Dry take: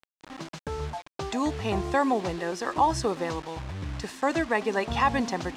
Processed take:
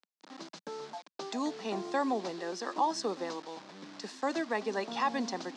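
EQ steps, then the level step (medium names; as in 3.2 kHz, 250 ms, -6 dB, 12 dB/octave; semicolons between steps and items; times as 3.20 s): steep high-pass 190 Hz 48 dB/octave; distance through air 100 m; resonant high shelf 3.5 kHz +7 dB, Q 1.5; -6.0 dB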